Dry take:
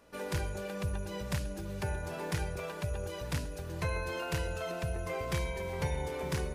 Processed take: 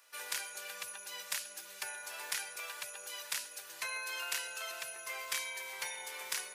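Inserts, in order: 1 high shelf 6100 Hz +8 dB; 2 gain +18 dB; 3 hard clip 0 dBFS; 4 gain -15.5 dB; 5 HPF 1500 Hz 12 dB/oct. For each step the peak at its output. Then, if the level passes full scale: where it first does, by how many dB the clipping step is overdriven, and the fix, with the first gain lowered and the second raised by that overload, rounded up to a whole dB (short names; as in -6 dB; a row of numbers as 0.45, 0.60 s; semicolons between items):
-20.0, -2.0, -2.0, -17.5, -19.5 dBFS; no overload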